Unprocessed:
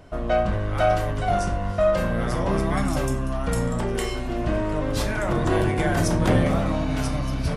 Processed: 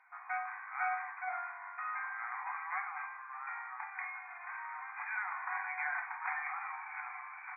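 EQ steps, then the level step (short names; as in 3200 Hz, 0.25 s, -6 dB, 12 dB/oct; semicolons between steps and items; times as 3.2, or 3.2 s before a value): brick-wall FIR band-pass 720–2500 Hz; air absorption 360 m; differentiator; +10.0 dB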